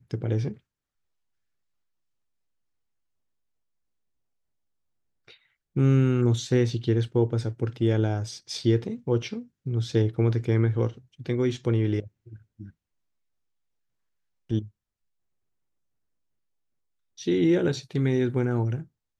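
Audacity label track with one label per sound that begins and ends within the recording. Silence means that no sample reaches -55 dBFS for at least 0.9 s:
5.280000	12.710000	sound
14.490000	14.700000	sound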